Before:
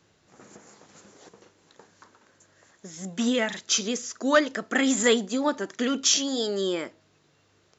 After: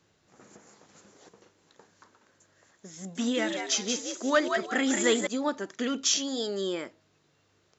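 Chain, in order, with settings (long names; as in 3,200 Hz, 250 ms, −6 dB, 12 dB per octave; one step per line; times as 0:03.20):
0:02.97–0:05.27: echo with shifted repeats 180 ms, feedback 33%, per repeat +77 Hz, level −5.5 dB
level −4 dB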